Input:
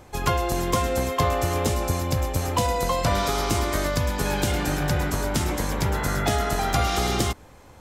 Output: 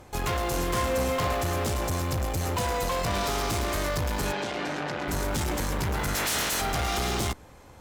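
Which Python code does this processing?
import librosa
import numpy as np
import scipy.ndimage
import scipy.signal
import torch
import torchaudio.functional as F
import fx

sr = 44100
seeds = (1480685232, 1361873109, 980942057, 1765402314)

p1 = fx.spec_clip(x, sr, under_db=28, at=(6.14, 6.6), fade=0.02)
p2 = fx.quant_dither(p1, sr, seeds[0], bits=6, dither='none')
p3 = p1 + F.gain(torch.from_numpy(p2), -6.5).numpy()
p4 = fx.tube_stage(p3, sr, drive_db=25.0, bias=0.4)
p5 = fx.doubler(p4, sr, ms=42.0, db=-6, at=(0.47, 1.33))
y = fx.bandpass_edges(p5, sr, low_hz=240.0, high_hz=4400.0, at=(4.31, 5.07), fade=0.02)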